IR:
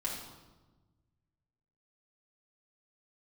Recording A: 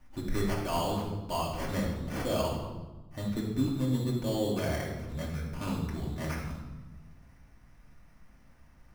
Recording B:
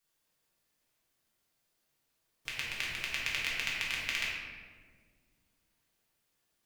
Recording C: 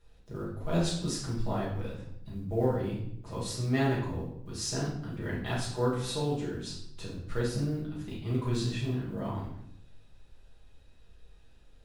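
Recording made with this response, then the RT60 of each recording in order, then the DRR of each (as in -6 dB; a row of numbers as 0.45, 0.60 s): A; 1.2, 1.7, 0.75 s; -4.5, -6.0, -7.0 dB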